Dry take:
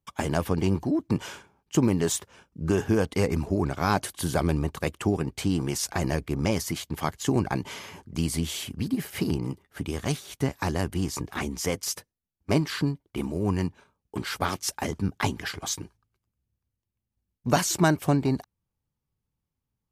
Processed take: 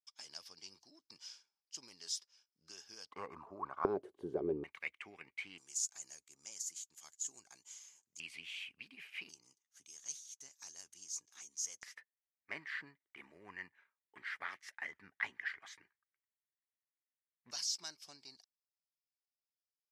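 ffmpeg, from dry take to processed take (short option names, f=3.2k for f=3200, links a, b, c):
-af "asetnsamples=n=441:p=0,asendcmd='3.11 bandpass f 1100;3.85 bandpass f 400;4.64 bandpass f 2200;5.58 bandpass f 6900;8.2 bandpass f 2500;9.29 bandpass f 6400;11.83 bandpass f 1900;17.51 bandpass f 5100',bandpass=f=5.1k:t=q:w=7.2:csg=0"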